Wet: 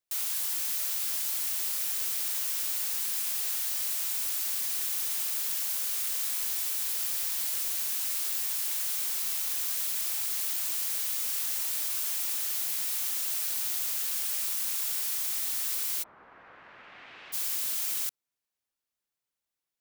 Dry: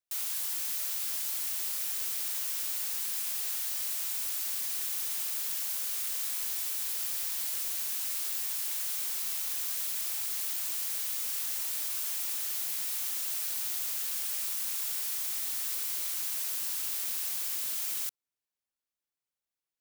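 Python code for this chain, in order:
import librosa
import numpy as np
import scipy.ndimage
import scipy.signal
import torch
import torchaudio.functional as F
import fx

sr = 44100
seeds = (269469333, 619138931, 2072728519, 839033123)

y = fx.lowpass(x, sr, hz=fx.line((16.02, 1200.0), (17.32, 2900.0)), slope=24, at=(16.02, 17.32), fade=0.02)
y = y * 10.0 ** (2.5 / 20.0)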